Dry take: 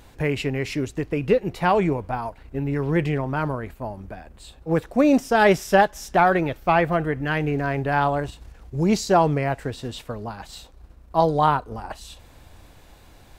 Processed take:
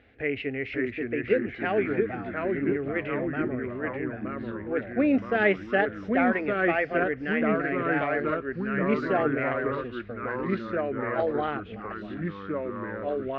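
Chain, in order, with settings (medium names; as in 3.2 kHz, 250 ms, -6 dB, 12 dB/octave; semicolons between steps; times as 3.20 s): cabinet simulation 120–2500 Hz, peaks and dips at 190 Hz +4 dB, 350 Hz -10 dB, 560 Hz -6 dB, 2 kHz +4 dB; static phaser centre 400 Hz, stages 4; ever faster or slower copies 512 ms, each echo -2 st, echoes 3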